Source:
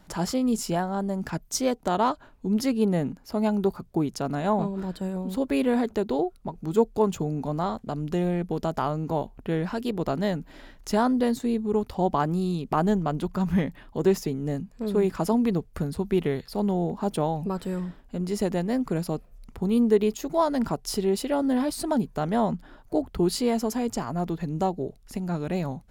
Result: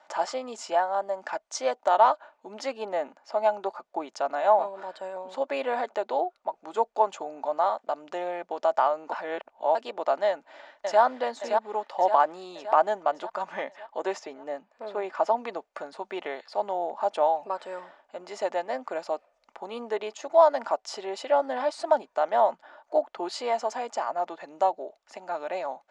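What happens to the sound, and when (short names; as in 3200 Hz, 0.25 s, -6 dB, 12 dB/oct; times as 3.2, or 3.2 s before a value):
9.12–9.75 reverse
10.27–11.01 echo throw 0.57 s, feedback 55%, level -4.5 dB
14.19–15.38 high shelf 6200 Hz -10 dB
whole clip: elliptic band-pass 670–7300 Hz, stop band 70 dB; tilt -4 dB/oct; comb 3.4 ms, depth 31%; gain +5 dB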